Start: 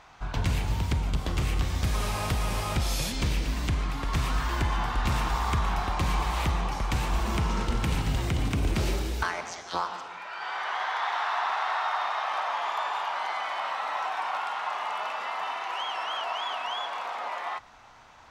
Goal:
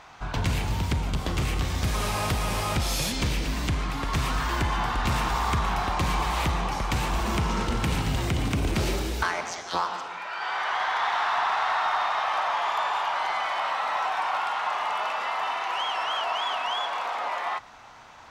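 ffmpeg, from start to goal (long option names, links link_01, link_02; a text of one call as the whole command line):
ffmpeg -i in.wav -filter_complex "[0:a]lowshelf=frequency=60:gain=-8,asplit=2[link_01][link_02];[link_02]asoftclip=type=tanh:threshold=-27.5dB,volume=-3dB[link_03];[link_01][link_03]amix=inputs=2:normalize=0" out.wav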